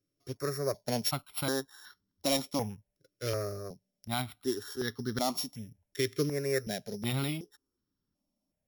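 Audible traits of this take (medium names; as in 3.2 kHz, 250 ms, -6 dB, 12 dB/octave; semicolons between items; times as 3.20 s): a buzz of ramps at a fixed pitch in blocks of 8 samples; notches that jump at a steady rate 2.7 Hz 220–2400 Hz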